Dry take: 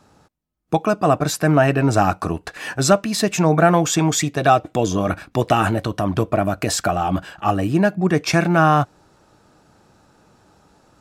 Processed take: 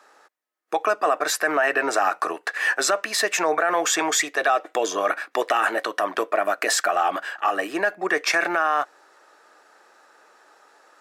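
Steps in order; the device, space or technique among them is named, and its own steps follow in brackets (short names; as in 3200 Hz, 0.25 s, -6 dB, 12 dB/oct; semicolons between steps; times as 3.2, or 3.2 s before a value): laptop speaker (HPF 410 Hz 24 dB/oct; bell 1200 Hz +4 dB 0.29 oct; bell 1800 Hz +10 dB 0.55 oct; limiter -10.5 dBFS, peak gain reduction 11 dB)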